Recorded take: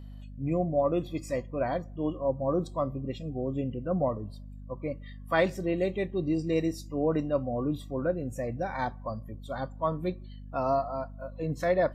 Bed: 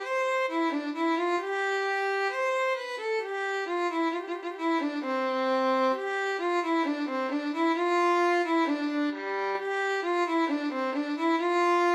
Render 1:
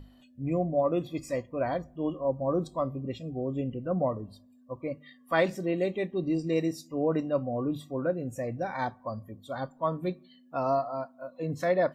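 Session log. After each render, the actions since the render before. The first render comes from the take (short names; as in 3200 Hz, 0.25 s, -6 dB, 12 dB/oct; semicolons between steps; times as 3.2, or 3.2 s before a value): notches 50/100/150/200 Hz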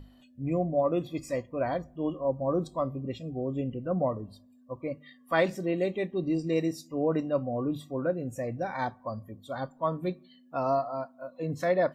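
nothing audible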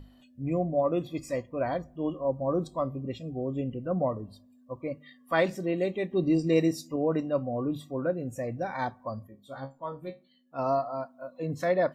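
6.11–6.96 gain +4 dB; 9.27–10.59 resonator 68 Hz, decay 0.19 s, mix 100%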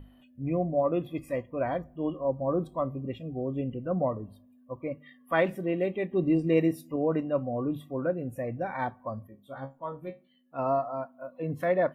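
band shelf 5600 Hz -16 dB 1.2 oct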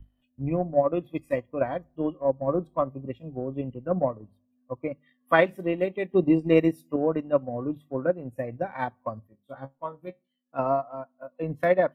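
transient shaper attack +7 dB, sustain -8 dB; three-band expander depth 40%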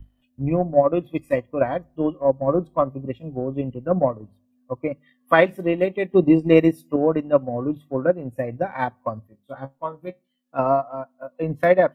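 gain +5.5 dB; limiter -2 dBFS, peak gain reduction 3 dB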